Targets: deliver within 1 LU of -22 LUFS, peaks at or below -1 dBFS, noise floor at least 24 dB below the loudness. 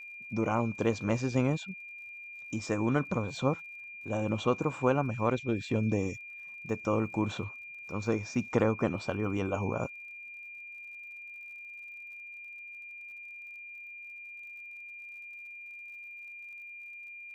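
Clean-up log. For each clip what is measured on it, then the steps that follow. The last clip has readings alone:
tick rate 53 per s; steady tone 2.4 kHz; tone level -43 dBFS; loudness -34.0 LUFS; peak level -13.0 dBFS; loudness target -22.0 LUFS
-> de-click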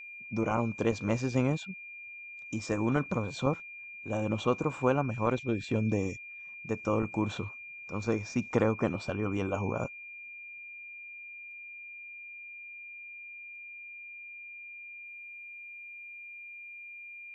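tick rate 0.23 per s; steady tone 2.4 kHz; tone level -43 dBFS
-> band-stop 2.4 kHz, Q 30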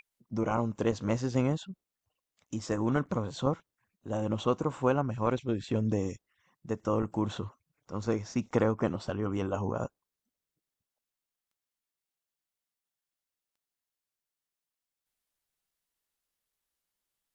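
steady tone not found; loudness -32.0 LUFS; peak level -13.0 dBFS; loudness target -22.0 LUFS
-> trim +10 dB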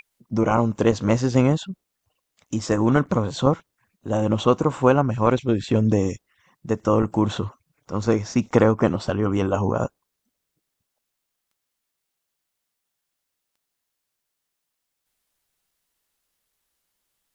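loudness -22.0 LUFS; peak level -3.0 dBFS; noise floor -80 dBFS

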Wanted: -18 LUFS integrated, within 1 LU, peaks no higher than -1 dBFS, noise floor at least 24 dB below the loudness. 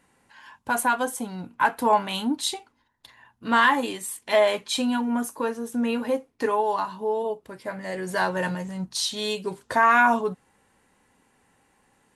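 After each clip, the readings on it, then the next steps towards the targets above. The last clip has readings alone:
loudness -24.5 LUFS; peak level -8.0 dBFS; loudness target -18.0 LUFS
-> trim +6.5 dB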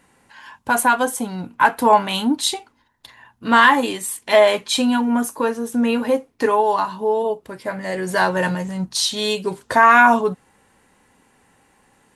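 loudness -18.0 LUFS; peak level -1.5 dBFS; noise floor -61 dBFS

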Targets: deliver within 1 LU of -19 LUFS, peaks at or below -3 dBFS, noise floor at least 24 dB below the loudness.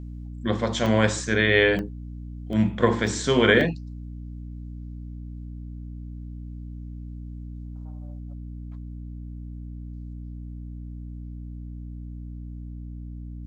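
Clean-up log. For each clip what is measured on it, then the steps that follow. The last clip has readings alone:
dropouts 5; longest dropout 1.2 ms; hum 60 Hz; highest harmonic 300 Hz; hum level -34 dBFS; loudness -22.5 LUFS; peak level -4.0 dBFS; loudness target -19.0 LUFS
-> interpolate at 0.86/1.79/2.53/3.07/3.61 s, 1.2 ms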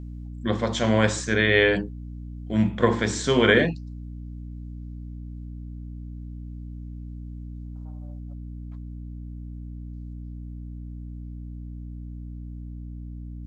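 dropouts 0; hum 60 Hz; highest harmonic 300 Hz; hum level -34 dBFS
-> hum notches 60/120/180/240/300 Hz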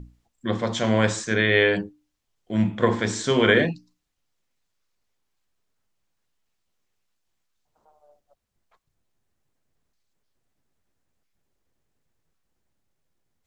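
hum not found; loudness -22.0 LUFS; peak level -4.5 dBFS; loudness target -19.0 LUFS
-> trim +3 dB; peak limiter -3 dBFS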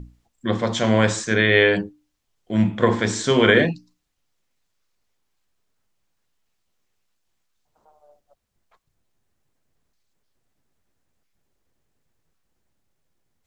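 loudness -19.0 LUFS; peak level -3.0 dBFS; noise floor -74 dBFS

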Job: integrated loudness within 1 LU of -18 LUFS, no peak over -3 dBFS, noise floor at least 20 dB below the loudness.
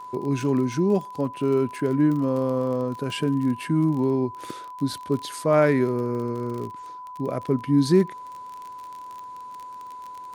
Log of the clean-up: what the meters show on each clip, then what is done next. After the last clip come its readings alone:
tick rate 29 per s; steady tone 1 kHz; tone level -36 dBFS; loudness -24.0 LUFS; peak level -6.5 dBFS; loudness target -18.0 LUFS
-> de-click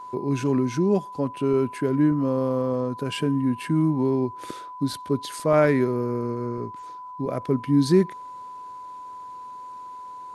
tick rate 0 per s; steady tone 1 kHz; tone level -36 dBFS
-> band-stop 1 kHz, Q 30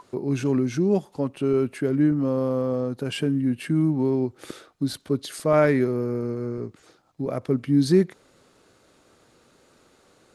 steady tone not found; loudness -24.0 LUFS; peak level -6.5 dBFS; loudness target -18.0 LUFS
-> trim +6 dB; peak limiter -3 dBFS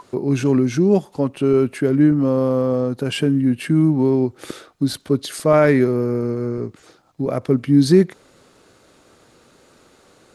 loudness -18.5 LUFS; peak level -3.0 dBFS; noise floor -54 dBFS

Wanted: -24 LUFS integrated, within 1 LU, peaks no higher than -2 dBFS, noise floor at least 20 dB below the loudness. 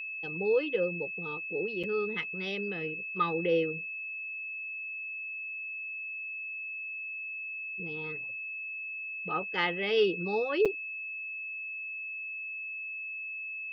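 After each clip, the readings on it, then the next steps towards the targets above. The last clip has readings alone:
dropouts 2; longest dropout 6.3 ms; steady tone 2.6 kHz; tone level -36 dBFS; loudness -33.0 LUFS; peak level -16.0 dBFS; loudness target -24.0 LUFS
-> interpolate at 1.83/10.65 s, 6.3 ms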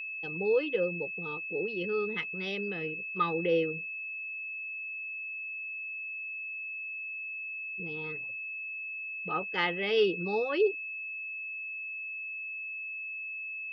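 dropouts 0; steady tone 2.6 kHz; tone level -36 dBFS
-> band-stop 2.6 kHz, Q 30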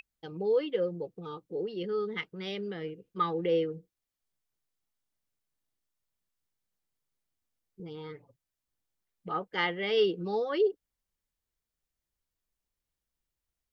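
steady tone not found; loudness -31.5 LUFS; peak level -16.0 dBFS; loudness target -24.0 LUFS
-> trim +7.5 dB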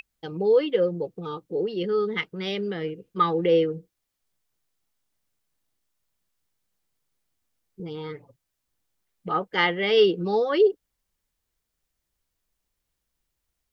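loudness -24.0 LUFS; peak level -8.5 dBFS; noise floor -81 dBFS

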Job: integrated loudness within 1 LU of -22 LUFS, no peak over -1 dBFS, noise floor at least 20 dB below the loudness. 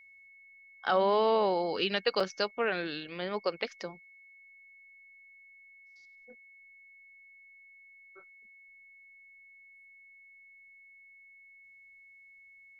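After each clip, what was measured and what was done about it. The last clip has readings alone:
dropouts 1; longest dropout 4.1 ms; steady tone 2.2 kHz; tone level -54 dBFS; loudness -30.5 LUFS; peak level -14.0 dBFS; loudness target -22.0 LUFS
-> interpolate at 2.20 s, 4.1 ms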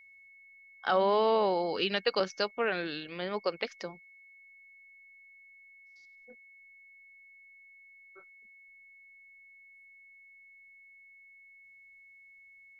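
dropouts 0; steady tone 2.2 kHz; tone level -54 dBFS
-> band-stop 2.2 kHz, Q 30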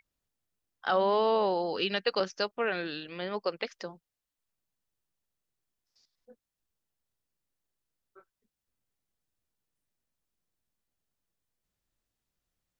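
steady tone not found; loudness -30.0 LUFS; peak level -14.0 dBFS; loudness target -22.0 LUFS
-> trim +8 dB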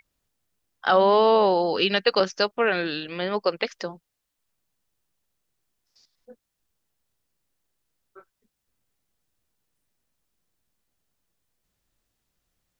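loudness -22.0 LUFS; peak level -6.0 dBFS; noise floor -81 dBFS

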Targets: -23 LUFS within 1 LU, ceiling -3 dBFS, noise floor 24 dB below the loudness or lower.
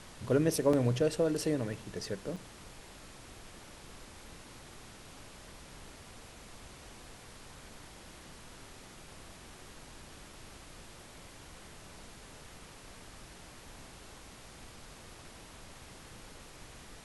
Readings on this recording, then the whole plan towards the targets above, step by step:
dropouts 3; longest dropout 4.2 ms; noise floor -53 dBFS; noise floor target -56 dBFS; loudness -31.5 LUFS; peak level -15.5 dBFS; loudness target -23.0 LUFS
-> interpolate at 0.73/1.73/2.36 s, 4.2 ms; noise print and reduce 6 dB; trim +8.5 dB

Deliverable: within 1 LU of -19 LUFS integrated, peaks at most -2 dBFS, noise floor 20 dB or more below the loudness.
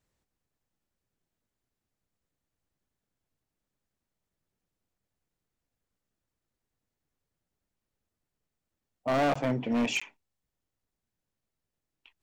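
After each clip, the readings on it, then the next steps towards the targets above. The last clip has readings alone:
clipped samples 0.9%; clipping level -23.0 dBFS; dropouts 2; longest dropout 15 ms; loudness -29.0 LUFS; peak level -23.0 dBFS; loudness target -19.0 LUFS
-> clip repair -23 dBFS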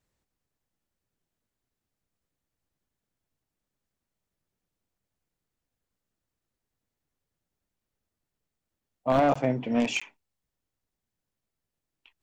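clipped samples 0.0%; dropouts 2; longest dropout 15 ms
-> interpolate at 9.34/10.00 s, 15 ms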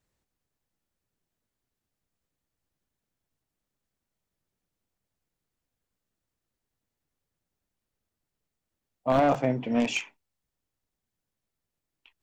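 dropouts 0; loudness -26.5 LUFS; peak level -14.0 dBFS; loudness target -19.0 LUFS
-> trim +7.5 dB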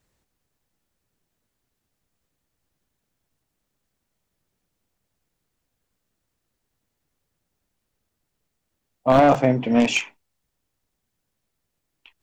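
loudness -19.0 LUFS; peak level -6.5 dBFS; noise floor -79 dBFS

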